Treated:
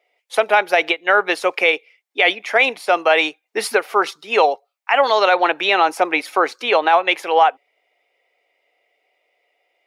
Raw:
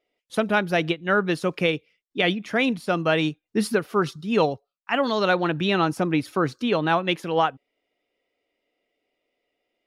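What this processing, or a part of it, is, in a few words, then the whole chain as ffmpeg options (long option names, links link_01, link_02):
laptop speaker: -af "highpass=frequency=430:width=0.5412,highpass=frequency=430:width=1.3066,equalizer=frequency=800:width_type=o:width=0.53:gain=8,equalizer=frequency=2200:width_type=o:width=0.45:gain=8,alimiter=limit=-11dB:level=0:latency=1:release=40,volume=7dB"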